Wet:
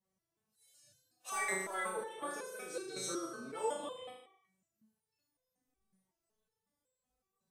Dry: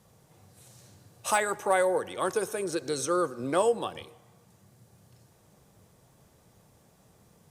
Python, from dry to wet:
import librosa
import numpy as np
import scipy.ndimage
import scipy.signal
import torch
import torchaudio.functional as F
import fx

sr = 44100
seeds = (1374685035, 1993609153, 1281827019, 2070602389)

y = fx.room_flutter(x, sr, wall_m=6.4, rt60_s=0.87)
y = fx.noise_reduce_blind(y, sr, reduce_db=17)
y = fx.resonator_held(y, sr, hz=5.4, low_hz=190.0, high_hz=510.0)
y = y * librosa.db_to_amplitude(2.5)